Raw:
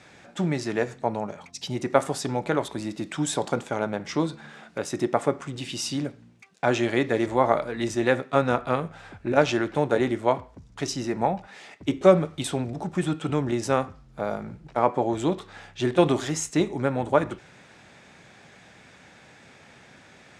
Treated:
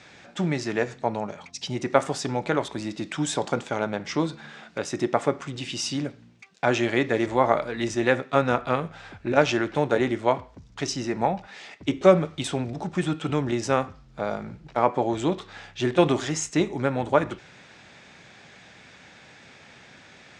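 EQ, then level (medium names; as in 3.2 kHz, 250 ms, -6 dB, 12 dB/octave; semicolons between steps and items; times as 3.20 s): treble shelf 2.9 kHz +11.5 dB; dynamic bell 4 kHz, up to -4 dB, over -39 dBFS, Q 2; distance through air 110 m; 0.0 dB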